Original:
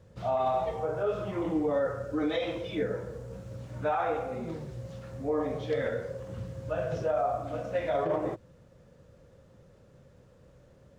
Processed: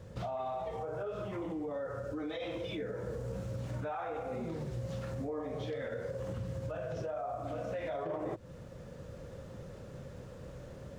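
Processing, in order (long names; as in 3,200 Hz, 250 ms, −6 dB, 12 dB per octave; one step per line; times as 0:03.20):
downward compressor 5 to 1, threshold −40 dBFS, peak gain reduction 14 dB
brickwall limiter −36.5 dBFS, peak gain reduction 5.5 dB
speech leveller within 4 dB 2 s
level +6 dB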